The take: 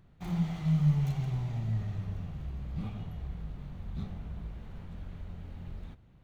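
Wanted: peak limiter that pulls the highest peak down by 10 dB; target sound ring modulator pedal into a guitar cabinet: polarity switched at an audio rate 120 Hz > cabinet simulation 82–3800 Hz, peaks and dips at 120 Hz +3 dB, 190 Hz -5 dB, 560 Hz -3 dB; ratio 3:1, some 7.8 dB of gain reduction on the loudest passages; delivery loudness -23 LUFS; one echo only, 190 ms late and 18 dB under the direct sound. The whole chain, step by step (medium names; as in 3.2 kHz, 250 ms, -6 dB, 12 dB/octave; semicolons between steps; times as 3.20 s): compression 3:1, threshold -31 dBFS; peak limiter -34 dBFS; delay 190 ms -18 dB; polarity switched at an audio rate 120 Hz; cabinet simulation 82–3800 Hz, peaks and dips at 120 Hz +3 dB, 190 Hz -5 dB, 560 Hz -3 dB; trim +21 dB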